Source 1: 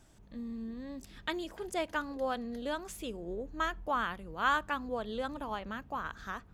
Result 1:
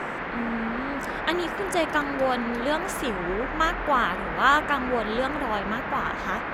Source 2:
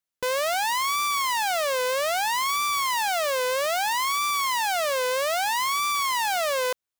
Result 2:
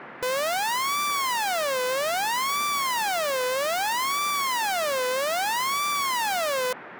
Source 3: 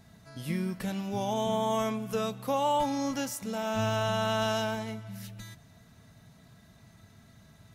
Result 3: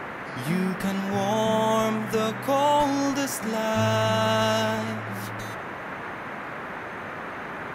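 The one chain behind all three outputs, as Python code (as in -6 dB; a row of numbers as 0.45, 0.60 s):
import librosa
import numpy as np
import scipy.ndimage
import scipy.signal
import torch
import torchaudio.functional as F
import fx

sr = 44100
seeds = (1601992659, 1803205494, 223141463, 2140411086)

y = fx.dmg_noise_band(x, sr, seeds[0], low_hz=150.0, high_hz=1900.0, level_db=-41.0)
y = y * 10.0 ** (-26 / 20.0) / np.sqrt(np.mean(np.square(y)))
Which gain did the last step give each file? +9.5, -1.0, +6.0 dB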